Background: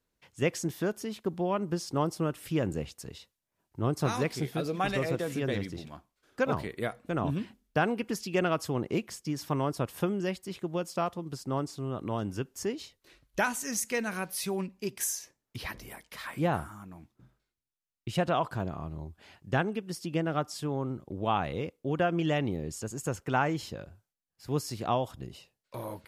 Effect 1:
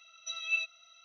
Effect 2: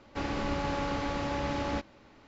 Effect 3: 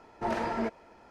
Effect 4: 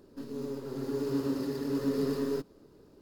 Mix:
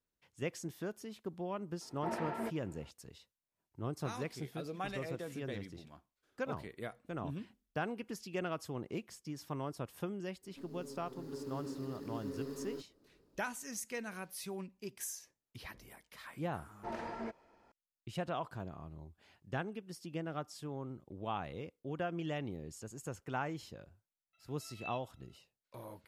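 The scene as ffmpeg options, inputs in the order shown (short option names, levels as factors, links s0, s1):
-filter_complex "[3:a]asplit=2[s0][s1];[0:a]volume=0.299[s2];[s0]highpass=110,lowpass=3300[s3];[1:a]lowpass=2000[s4];[s3]atrim=end=1.1,asetpts=PTS-STARTPTS,volume=0.398,afade=t=in:d=0.004:c=hsin,afade=t=out:st=1.096:d=0.004:c=hsin,adelay=1810[s5];[4:a]atrim=end=3.01,asetpts=PTS-STARTPTS,volume=0.237,afade=t=in:d=0.05,afade=t=out:st=2.96:d=0.05,adelay=10400[s6];[s1]atrim=end=1.1,asetpts=PTS-STARTPTS,volume=0.282,afade=t=in:d=0.004:c=hsin,afade=t=out:st=1.096:d=0.004:c=hsin,adelay=16620[s7];[s4]atrim=end=1.04,asetpts=PTS-STARTPTS,volume=0.299,afade=t=in:d=0.004:c=hsin,afade=t=out:st=1.036:d=0.004:c=hsin,adelay=24330[s8];[s2][s5][s6][s7][s8]amix=inputs=5:normalize=0"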